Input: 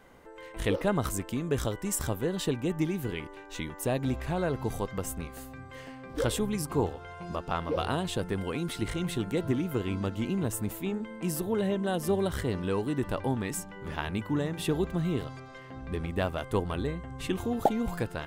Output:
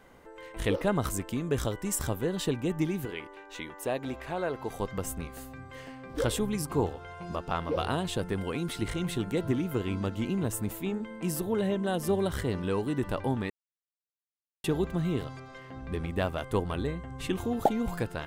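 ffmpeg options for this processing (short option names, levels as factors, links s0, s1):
-filter_complex "[0:a]asettb=1/sr,asplit=3[s0][s1][s2];[s0]atrim=end=3.054[s3];[s1]atrim=start=3.05:end=4.8,asetpts=PTS-STARTPTS,afade=t=in:d=0.004:c=qsin,afade=t=out:st=1.746:d=0.004:c=qsin,bass=f=250:g=-12,treble=f=4000:g=-5[s4];[s2]atrim=start=4.796[s5];[s3][s4]acrossfade=d=0.004:c1=hsin:c2=qsin[s6];[s6][s5]acrossfade=d=0.004:c1=qsin:c2=hsin,asplit=3[s7][s8][s9];[s7]atrim=end=13.5,asetpts=PTS-STARTPTS,afade=t=out:st=13.496:d=0.004:c=hsin[s10];[s8]atrim=start=13.5:end=14.64,asetpts=PTS-STARTPTS,volume=0[s11];[s9]atrim=start=14.64,asetpts=PTS-STARTPTS,afade=t=in:d=0.004:c=hsin[s12];[s10][s11][s12]concat=n=3:v=0:a=1"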